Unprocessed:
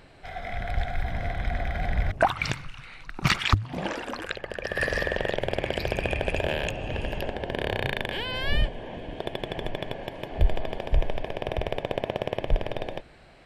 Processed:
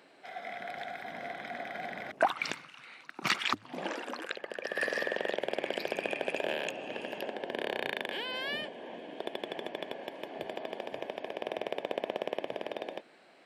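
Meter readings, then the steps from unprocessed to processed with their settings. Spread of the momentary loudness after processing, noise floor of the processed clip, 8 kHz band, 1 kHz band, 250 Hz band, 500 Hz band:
10 LU, -59 dBFS, -5.0 dB, -5.0 dB, -7.5 dB, -5.0 dB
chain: high-pass 230 Hz 24 dB/octave; trim -5 dB

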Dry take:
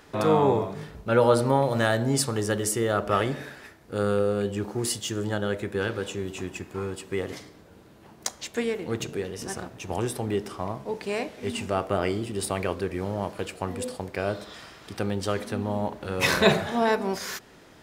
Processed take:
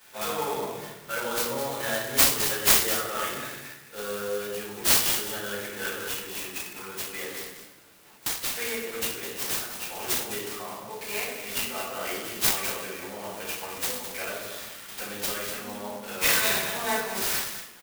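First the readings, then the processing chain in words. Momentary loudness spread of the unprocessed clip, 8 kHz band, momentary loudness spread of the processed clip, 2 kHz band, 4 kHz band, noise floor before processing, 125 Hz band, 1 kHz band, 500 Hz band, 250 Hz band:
13 LU, +7.0 dB, 16 LU, +1.5 dB, +5.0 dB, -52 dBFS, -14.5 dB, -4.0 dB, -8.0 dB, -10.5 dB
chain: bass shelf 210 Hz +7.5 dB; peak limiter -13 dBFS, peak gain reduction 8.5 dB; high-pass 120 Hz; differentiator; on a send: delay 208 ms -10 dB; on the sum: simulated room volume 180 m³, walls mixed, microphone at 4.7 m; sampling jitter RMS 0.049 ms

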